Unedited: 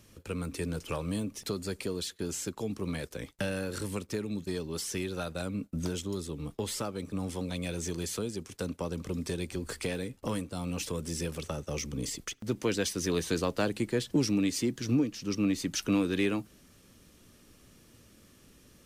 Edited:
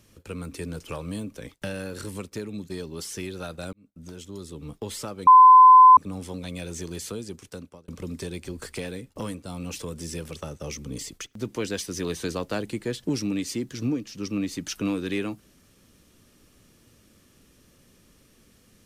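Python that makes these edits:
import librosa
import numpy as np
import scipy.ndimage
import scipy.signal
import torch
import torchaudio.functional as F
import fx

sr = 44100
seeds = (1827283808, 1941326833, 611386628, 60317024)

y = fx.edit(x, sr, fx.cut(start_s=1.36, length_s=1.77),
    fx.fade_in_span(start_s=5.5, length_s=0.97),
    fx.insert_tone(at_s=7.04, length_s=0.7, hz=1020.0, db=-7.5),
    fx.fade_out_span(start_s=8.44, length_s=0.51), tone=tone)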